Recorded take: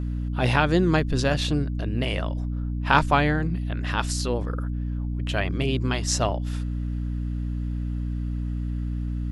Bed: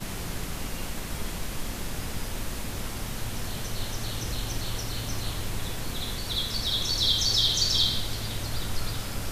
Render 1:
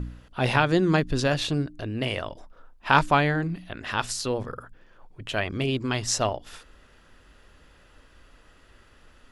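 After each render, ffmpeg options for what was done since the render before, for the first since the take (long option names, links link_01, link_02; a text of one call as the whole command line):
ffmpeg -i in.wav -af "bandreject=frequency=60:width_type=h:width=4,bandreject=frequency=120:width_type=h:width=4,bandreject=frequency=180:width_type=h:width=4,bandreject=frequency=240:width_type=h:width=4,bandreject=frequency=300:width_type=h:width=4" out.wav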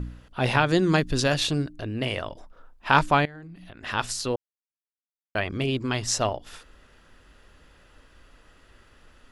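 ffmpeg -i in.wav -filter_complex "[0:a]asettb=1/sr,asplit=3[link_01][link_02][link_03];[link_01]atrim=end=0.684[link_04];[link_02]atrim=start=0.68:end=1.69,asetpts=PTS-STARTPTS,afade=type=in:duration=0.004:curve=qsin,afade=type=out:start_time=1.006:duration=0.004:curve=qsin,highshelf=frequency=3400:gain=6.5[link_05];[link_03]atrim=start=1.686[link_06];[link_04][link_05]acrossfade=duration=0.004:curve1=hsin:curve2=qsin[link_07];[link_07][link_06]acrossfade=duration=0.004:curve1=qsin:curve2=hsin,asettb=1/sr,asplit=3[link_08][link_09][link_10];[link_08]atrim=end=3.254[link_11];[link_09]atrim=start=3.25:end=3.83,asetpts=PTS-STARTPTS,afade=type=in:duration=0.004:curve=qsin,afade=type=out:start_time=0.576:duration=0.004:curve=qsin,acompressor=threshold=-40dB:ratio=8:attack=3.2:release=140:knee=1:detection=peak[link_12];[link_10]atrim=start=3.826[link_13];[link_11][link_12]acrossfade=duration=0.004:curve1=hsin:curve2=qsin[link_14];[link_14][link_13]acrossfade=duration=0.004:curve1=qsin:curve2=hsin,asplit=3[link_15][link_16][link_17];[link_15]atrim=end=4.36,asetpts=PTS-STARTPTS,afade=type=out:start_time=4.356:duration=0.004:curve=hsin[link_18];[link_16]atrim=start=4.36:end=5.35,asetpts=PTS-STARTPTS,volume=0[link_19];[link_17]atrim=start=5.35,asetpts=PTS-STARTPTS,afade=type=in:duration=0.004:curve=hsin[link_20];[link_18][link_19][link_20]concat=n=3:v=0:a=1" out.wav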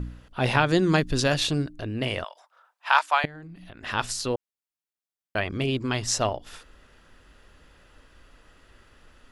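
ffmpeg -i in.wav -filter_complex "[0:a]asettb=1/sr,asplit=3[link_01][link_02][link_03];[link_01]atrim=end=2.244[link_04];[link_02]atrim=start=2.24:end=3.24,asetpts=PTS-STARTPTS,afade=type=in:duration=0.004:curve=qsin,afade=type=out:start_time=0.996:duration=0.004:curve=qsin,highpass=frequency=730:width=0.5412,highpass=frequency=730:width=1.3066[link_05];[link_03]atrim=start=3.236[link_06];[link_04][link_05]acrossfade=duration=0.004:curve1=hsin:curve2=qsin[link_07];[link_07][link_06]acrossfade=duration=0.004:curve1=qsin:curve2=hsin" out.wav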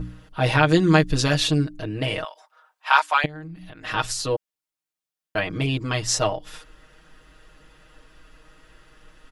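ffmpeg -i in.wav -af "aecho=1:1:6.4:0.96" out.wav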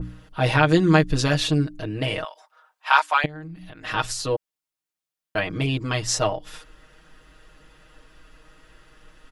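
ffmpeg -i in.wav -af "adynamicequalizer=threshold=0.0251:dfrequency=2600:dqfactor=0.7:tfrequency=2600:tqfactor=0.7:attack=5:release=100:ratio=0.375:range=2:mode=cutabove:tftype=highshelf" out.wav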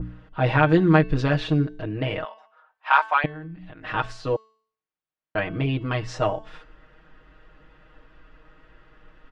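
ffmpeg -i in.wav -af "lowpass=2300,bandreject=frequency=220.4:width_type=h:width=4,bandreject=frequency=440.8:width_type=h:width=4,bandreject=frequency=661.2:width_type=h:width=4,bandreject=frequency=881.6:width_type=h:width=4,bandreject=frequency=1102:width_type=h:width=4,bandreject=frequency=1322.4:width_type=h:width=4,bandreject=frequency=1542.8:width_type=h:width=4,bandreject=frequency=1763.2:width_type=h:width=4,bandreject=frequency=1983.6:width_type=h:width=4,bandreject=frequency=2204:width_type=h:width=4,bandreject=frequency=2424.4:width_type=h:width=4,bandreject=frequency=2644.8:width_type=h:width=4,bandreject=frequency=2865.2:width_type=h:width=4,bandreject=frequency=3085.6:width_type=h:width=4,bandreject=frequency=3306:width_type=h:width=4,bandreject=frequency=3526.4:width_type=h:width=4,bandreject=frequency=3746.8:width_type=h:width=4,bandreject=frequency=3967.2:width_type=h:width=4,bandreject=frequency=4187.6:width_type=h:width=4,bandreject=frequency=4408:width_type=h:width=4,bandreject=frequency=4628.4:width_type=h:width=4,bandreject=frequency=4848.8:width_type=h:width=4,bandreject=frequency=5069.2:width_type=h:width=4,bandreject=frequency=5289.6:width_type=h:width=4,bandreject=frequency=5510:width_type=h:width=4,bandreject=frequency=5730.4:width_type=h:width=4,bandreject=frequency=5950.8:width_type=h:width=4,bandreject=frequency=6171.2:width_type=h:width=4,bandreject=frequency=6391.6:width_type=h:width=4,bandreject=frequency=6612:width_type=h:width=4,bandreject=frequency=6832.4:width_type=h:width=4,bandreject=frequency=7052.8:width_type=h:width=4,bandreject=frequency=7273.2:width_type=h:width=4,bandreject=frequency=7493.6:width_type=h:width=4,bandreject=frequency=7714:width_type=h:width=4,bandreject=frequency=7934.4:width_type=h:width=4,bandreject=frequency=8154.8:width_type=h:width=4,bandreject=frequency=8375.2:width_type=h:width=4,bandreject=frequency=8595.6:width_type=h:width=4,bandreject=frequency=8816:width_type=h:width=4" out.wav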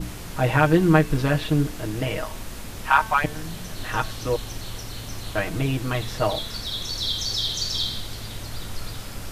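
ffmpeg -i in.wav -i bed.wav -filter_complex "[1:a]volume=-2.5dB[link_01];[0:a][link_01]amix=inputs=2:normalize=0" out.wav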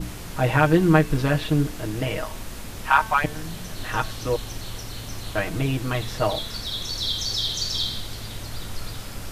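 ffmpeg -i in.wav -af anull out.wav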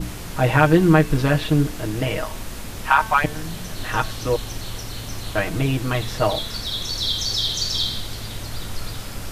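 ffmpeg -i in.wav -af "volume=3dB,alimiter=limit=-3dB:level=0:latency=1" out.wav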